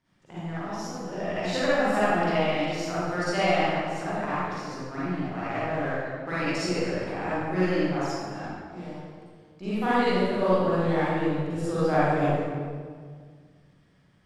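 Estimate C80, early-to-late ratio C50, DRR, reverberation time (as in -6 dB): -2.5 dB, -7.5 dB, -11.0 dB, 1.8 s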